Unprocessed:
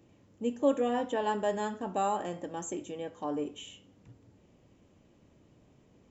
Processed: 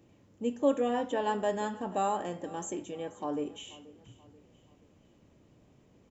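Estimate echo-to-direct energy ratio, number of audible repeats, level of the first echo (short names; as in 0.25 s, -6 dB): -18.5 dB, 3, -19.5 dB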